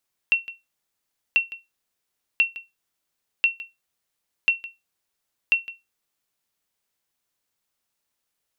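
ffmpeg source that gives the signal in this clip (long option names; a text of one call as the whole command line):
ffmpeg -f lavfi -i "aevalsrc='0.316*(sin(2*PI*2720*mod(t,1.04))*exp(-6.91*mod(t,1.04)/0.2)+0.133*sin(2*PI*2720*max(mod(t,1.04)-0.16,0))*exp(-6.91*max(mod(t,1.04)-0.16,0)/0.2))':duration=6.24:sample_rate=44100" out.wav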